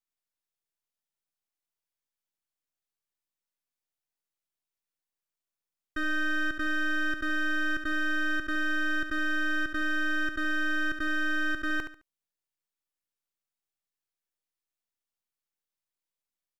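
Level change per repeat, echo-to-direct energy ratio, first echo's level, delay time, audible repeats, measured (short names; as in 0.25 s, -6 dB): -11.0 dB, -8.0 dB, -8.5 dB, 71 ms, 3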